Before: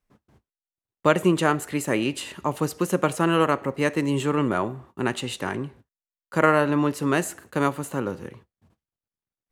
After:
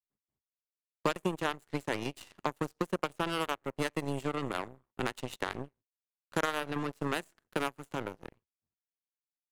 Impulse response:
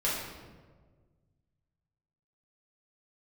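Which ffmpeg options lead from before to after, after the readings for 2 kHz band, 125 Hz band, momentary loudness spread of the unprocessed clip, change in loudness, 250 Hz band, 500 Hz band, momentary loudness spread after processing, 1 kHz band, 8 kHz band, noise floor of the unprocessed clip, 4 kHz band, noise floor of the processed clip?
−9.0 dB, −12.5 dB, 10 LU, −11.5 dB, −13.0 dB, −12.0 dB, 7 LU, −10.0 dB, −12.5 dB, below −85 dBFS, −6.5 dB, below −85 dBFS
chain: -filter_complex "[0:a]acrossover=split=120|6900[link_01][link_02][link_03];[link_01]acompressor=threshold=-46dB:ratio=4[link_04];[link_02]acompressor=threshold=-28dB:ratio=4[link_05];[link_03]acompressor=threshold=-48dB:ratio=4[link_06];[link_04][link_05][link_06]amix=inputs=3:normalize=0,aeval=exprs='0.211*(cos(1*acos(clip(val(0)/0.211,-1,1)))-cos(1*PI/2))+0.00211*(cos(3*acos(clip(val(0)/0.211,-1,1)))-cos(3*PI/2))+0.00168*(cos(5*acos(clip(val(0)/0.211,-1,1)))-cos(5*PI/2))+0.0075*(cos(6*acos(clip(val(0)/0.211,-1,1)))-cos(6*PI/2))+0.0299*(cos(7*acos(clip(val(0)/0.211,-1,1)))-cos(7*PI/2))':channel_layout=same"

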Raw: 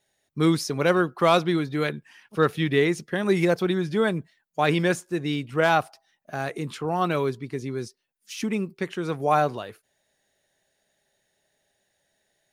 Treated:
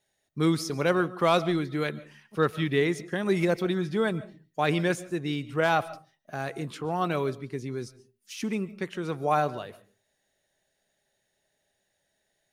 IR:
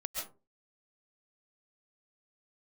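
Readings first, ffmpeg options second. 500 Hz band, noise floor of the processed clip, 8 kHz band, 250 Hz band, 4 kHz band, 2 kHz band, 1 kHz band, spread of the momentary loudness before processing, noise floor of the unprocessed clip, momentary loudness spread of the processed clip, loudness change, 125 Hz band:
−3.5 dB, −77 dBFS, −3.5 dB, −3.5 dB, −3.5 dB, −3.5 dB, −3.5 dB, 13 LU, −74 dBFS, 14 LU, −3.5 dB, −3.0 dB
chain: -filter_complex "[0:a]asplit=2[link_01][link_02];[1:a]atrim=start_sample=2205,lowshelf=frequency=210:gain=10.5[link_03];[link_02][link_03]afir=irnorm=-1:irlink=0,volume=-17dB[link_04];[link_01][link_04]amix=inputs=2:normalize=0,volume=-4.5dB"

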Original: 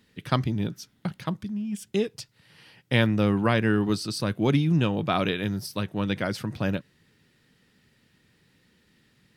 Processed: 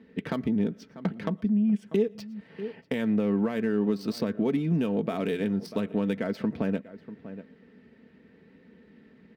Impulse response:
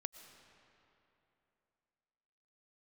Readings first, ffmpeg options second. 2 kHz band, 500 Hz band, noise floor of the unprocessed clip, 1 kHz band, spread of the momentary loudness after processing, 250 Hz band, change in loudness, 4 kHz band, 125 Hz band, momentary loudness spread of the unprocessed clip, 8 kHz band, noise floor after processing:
−9.0 dB, −0.5 dB, −65 dBFS, −8.5 dB, 15 LU, +0.5 dB, −2.0 dB, −11.5 dB, −6.5 dB, 11 LU, below −10 dB, −57 dBFS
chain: -filter_complex "[0:a]adynamicsmooth=sensitivity=5:basefreq=2500,equalizer=frequency=125:width_type=o:width=1:gain=-8,equalizer=frequency=250:width_type=o:width=1:gain=4,equalizer=frequency=500:width_type=o:width=1:gain=6,equalizer=frequency=2000:width_type=o:width=1:gain=7,equalizer=frequency=8000:width_type=o:width=1:gain=-4,alimiter=limit=-13.5dB:level=0:latency=1:release=173,highpass=77,asplit=2[link_01][link_02];[link_02]adelay=641.4,volume=-21dB,highshelf=frequency=4000:gain=-14.4[link_03];[link_01][link_03]amix=inputs=2:normalize=0,asplit=2[link_04][link_05];[1:a]atrim=start_sample=2205,afade=type=out:start_time=0.17:duration=0.01,atrim=end_sample=7938[link_06];[link_05][link_06]afir=irnorm=-1:irlink=0,volume=-0.5dB[link_07];[link_04][link_07]amix=inputs=2:normalize=0,acompressor=threshold=-31dB:ratio=2.5,tiltshelf=frequency=1100:gain=9.5,aecho=1:1:4.5:0.48,crystalizer=i=4.5:c=0,volume=-5dB"

